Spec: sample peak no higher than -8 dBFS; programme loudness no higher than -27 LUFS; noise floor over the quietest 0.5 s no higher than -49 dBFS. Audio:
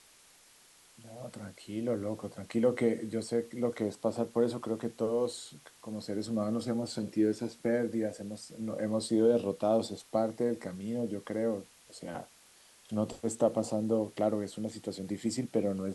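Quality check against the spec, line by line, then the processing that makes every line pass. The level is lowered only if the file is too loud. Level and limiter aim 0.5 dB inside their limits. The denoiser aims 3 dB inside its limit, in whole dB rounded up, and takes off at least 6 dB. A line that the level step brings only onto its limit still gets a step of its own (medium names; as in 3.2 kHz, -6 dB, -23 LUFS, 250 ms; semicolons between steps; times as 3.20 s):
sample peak -15.0 dBFS: pass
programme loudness -33.0 LUFS: pass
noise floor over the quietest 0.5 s -60 dBFS: pass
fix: none needed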